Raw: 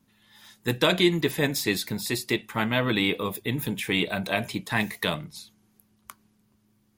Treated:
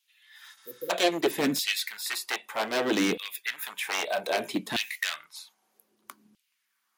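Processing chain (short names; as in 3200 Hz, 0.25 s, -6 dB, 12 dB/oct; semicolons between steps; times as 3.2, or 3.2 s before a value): one-sided fold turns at -22.5 dBFS; LFO high-pass saw down 0.63 Hz 200–3100 Hz; spectral repair 0.6–0.88, 550–11000 Hz before; gain -1.5 dB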